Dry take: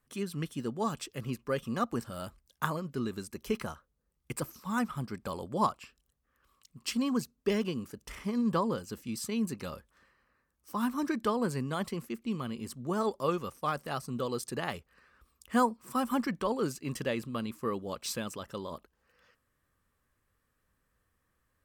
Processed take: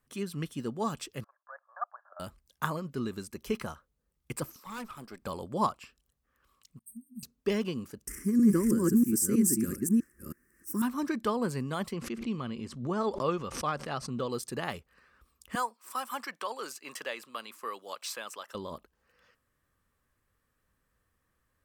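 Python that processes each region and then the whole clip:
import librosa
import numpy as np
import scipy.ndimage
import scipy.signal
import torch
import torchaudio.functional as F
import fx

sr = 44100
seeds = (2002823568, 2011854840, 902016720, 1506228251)

y = fx.chain(x, sr, fx.cheby1_bandpass(low_hz=590.0, high_hz=1700.0, order=5),
    fx.level_steps(step_db=15), at=(1.24, 2.2))
y = fx.chain(y, sr, fx.highpass(hz=310.0, slope=12),
    fx.high_shelf(hz=12000.0, db=5.0),
    fx.tube_stage(drive_db=36.0, bias=0.5), at=(4.56, 5.22))
y = fx.chain(y, sr, fx.brickwall_bandstop(low_hz=240.0, high_hz=8200.0),
    fx.low_shelf(hz=400.0, db=-11.0),
    fx.upward_expand(threshold_db=-51.0, expansion=1.5), at=(6.79, 7.23))
y = fx.chain(y, sr, fx.reverse_delay(ms=322, wet_db=0),
    fx.curve_eq(hz=(130.0, 340.0, 720.0, 1700.0, 3800.0, 5500.0, 8800.0), db=(0, 11, -25, 1, -24, 3, 14)), at=(8.07, 10.82))
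y = fx.chain(y, sr, fx.lowpass(hz=5500.0, slope=12),
    fx.pre_swell(db_per_s=88.0), at=(11.93, 14.3))
y = fx.chain(y, sr, fx.highpass(hz=760.0, slope=12),
    fx.band_squash(depth_pct=40), at=(15.55, 18.55))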